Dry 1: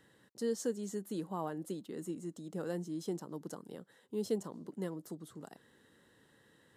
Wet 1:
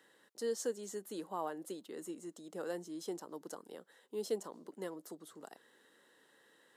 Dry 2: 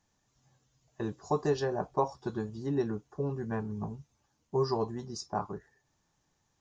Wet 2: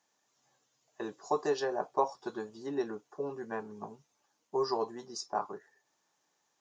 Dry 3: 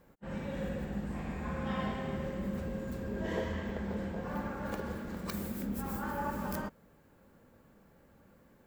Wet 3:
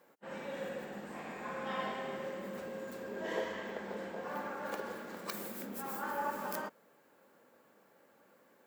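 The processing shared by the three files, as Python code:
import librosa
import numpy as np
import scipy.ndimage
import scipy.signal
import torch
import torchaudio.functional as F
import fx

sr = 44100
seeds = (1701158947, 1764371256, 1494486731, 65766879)

y = scipy.signal.sosfilt(scipy.signal.butter(2, 390.0, 'highpass', fs=sr, output='sos'), x)
y = F.gain(torch.from_numpy(y), 1.0).numpy()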